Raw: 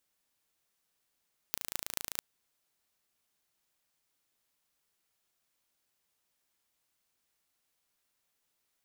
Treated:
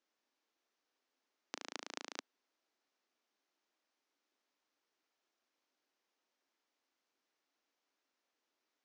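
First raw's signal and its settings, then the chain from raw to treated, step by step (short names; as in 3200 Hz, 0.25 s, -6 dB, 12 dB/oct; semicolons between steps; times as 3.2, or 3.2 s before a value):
pulse train 27.7/s, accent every 6, -4 dBFS 0.66 s
elliptic band-pass 270–6100 Hz; tilt -2 dB/oct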